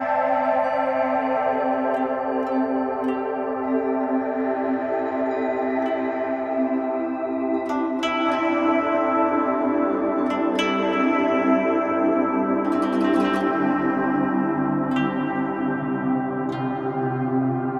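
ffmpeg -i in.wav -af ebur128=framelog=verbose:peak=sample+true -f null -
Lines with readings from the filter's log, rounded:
Integrated loudness:
  I:         -22.5 LUFS
  Threshold: -32.5 LUFS
Loudness range:
  LRA:         3.2 LU
  Threshold: -42.5 LUFS
  LRA low:   -24.1 LUFS
  LRA high:  -20.9 LUFS
Sample peak:
  Peak:       -8.3 dBFS
True peak:
  Peak:       -8.3 dBFS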